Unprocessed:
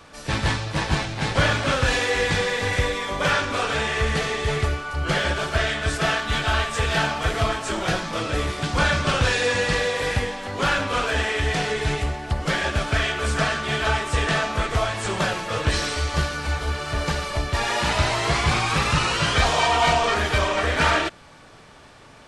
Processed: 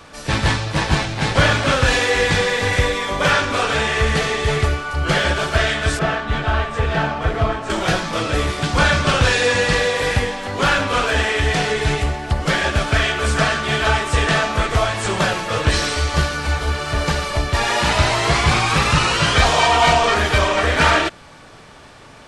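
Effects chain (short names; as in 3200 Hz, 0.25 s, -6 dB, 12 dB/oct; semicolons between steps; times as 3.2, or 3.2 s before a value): 5.99–7.7 LPF 1200 Hz 6 dB/oct; gain +5 dB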